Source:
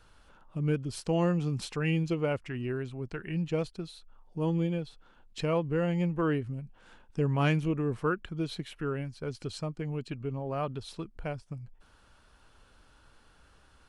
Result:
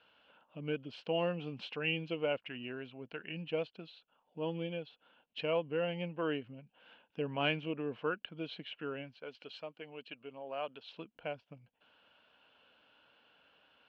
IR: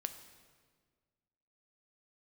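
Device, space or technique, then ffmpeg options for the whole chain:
phone earpiece: -filter_complex "[0:a]highpass=350,equalizer=frequency=370:width_type=q:width=4:gain=-10,equalizer=frequency=850:width_type=q:width=4:gain=-4,equalizer=frequency=1200:width_type=q:width=4:gain=-9,equalizer=frequency=1900:width_type=q:width=4:gain=-7,equalizer=frequency=2900:width_type=q:width=4:gain=8,lowpass=frequency=3200:width=0.5412,lowpass=frequency=3200:width=1.3066,asettb=1/sr,asplit=3[link_01][link_02][link_03];[link_01]atrim=end=9.194[link_04];[link_02]atrim=start=9.19:end=10.95,asetpts=PTS-STARTPTS,afade=type=in:duration=0.004:curve=qsin,afade=type=out:start_time=1.756:duration=0.004:curve=qsin,highpass=frequency=560:poles=1[link_05];[link_03]atrim=start=10.946[link_06];[link_04][link_05]acrossfade=duration=0.004:curve1=hsin:curve2=qsin[link_07];[link_07][link_06]acrossfade=duration=0.004:curve1=qsin:curve2=hsin"

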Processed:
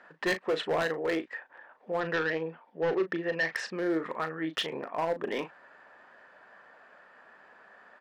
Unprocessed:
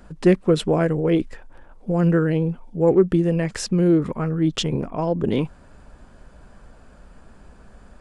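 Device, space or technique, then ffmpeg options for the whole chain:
megaphone: -filter_complex "[0:a]highpass=680,lowpass=2700,equalizer=frequency=1800:width_type=o:width=0.22:gain=11.5,asoftclip=type=hard:threshold=-23.5dB,asplit=2[link_01][link_02];[link_02]adelay=37,volume=-10.5dB[link_03];[link_01][link_03]amix=inputs=2:normalize=0,asettb=1/sr,asplit=3[link_04][link_05][link_06];[link_04]atrim=end=2.004[link_07];[link_05]atrim=start=2:end=3.56,asetpts=PTS-STARTPTS,afade=type=in:duration=0.004:curve=qsin,afade=type=out:start_time=1.556:duration=0.004:curve=qsin,lowpass=frequency=5500:width=0.5412,lowpass=frequency=5500:width=1.3066[link_08];[link_06]atrim=start=3.556[link_09];[link_07][link_08]acrossfade=duration=0.004:curve1=hsin:curve2=qsin[link_10];[link_10][link_09]acrossfade=duration=0.004:curve1=qsin:curve2=hsin"

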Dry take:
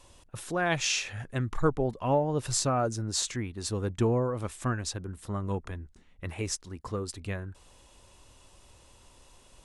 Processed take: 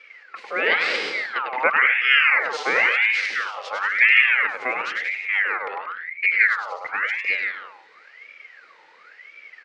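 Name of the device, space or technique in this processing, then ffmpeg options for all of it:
voice changer toy: -filter_complex "[0:a]asettb=1/sr,asplit=3[link_01][link_02][link_03];[link_01]atrim=end=5.764[link_04];[link_02]atrim=start=5.76:end=6.83,asetpts=PTS-STARTPTS,afade=type=in:duration=0.004:curve=qsin,afade=type=out:start_time=1.066:duration=0.004:curve=qsin,tiltshelf=frequency=940:gain=7.5[link_05];[link_03]atrim=start=6.826[link_06];[link_04][link_05]acrossfade=duration=0.004:curve1=hsin:curve2=qsin[link_07];[link_07][link_06]acrossfade=duration=0.004:curve1=qsin:curve2=hsin,aecho=1:1:100|180|244|295.2|336.2:0.631|0.398|0.251|0.158|0.1,aeval=exprs='val(0)*sin(2*PI*1600*n/s+1600*0.45/0.96*sin(2*PI*0.96*n/s))':channel_layout=same,highpass=480,equalizer=frequency=480:width_type=q:width=4:gain=7,equalizer=frequency=700:width_type=q:width=4:gain=-6,equalizer=frequency=1000:width_type=q:width=4:gain=-9,equalizer=frequency=2100:width_type=q:width=4:gain=7,equalizer=frequency=3500:width_type=q:width=4:gain=-5,lowpass=frequency=3900:width=0.5412,lowpass=frequency=3900:width=1.3066,volume=8.5dB"

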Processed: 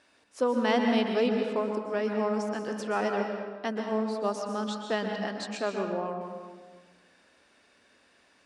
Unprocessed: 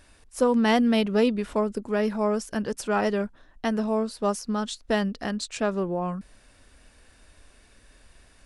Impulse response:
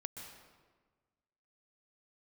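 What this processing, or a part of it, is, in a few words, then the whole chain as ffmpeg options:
supermarket ceiling speaker: -filter_complex "[0:a]highpass=260,lowpass=6000[link_01];[1:a]atrim=start_sample=2205[link_02];[link_01][link_02]afir=irnorm=-1:irlink=0"

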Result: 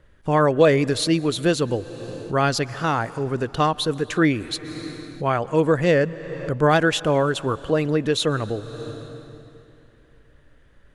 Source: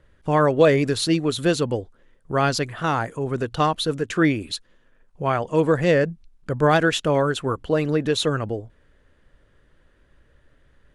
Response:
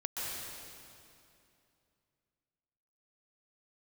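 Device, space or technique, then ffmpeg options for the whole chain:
ducked reverb: -filter_complex "[0:a]asplit=3[link_01][link_02][link_03];[1:a]atrim=start_sample=2205[link_04];[link_02][link_04]afir=irnorm=-1:irlink=0[link_05];[link_03]apad=whole_len=482853[link_06];[link_05][link_06]sidechaincompress=threshold=-35dB:ratio=4:attack=9.3:release=308,volume=-9dB[link_07];[link_01][link_07]amix=inputs=2:normalize=0"

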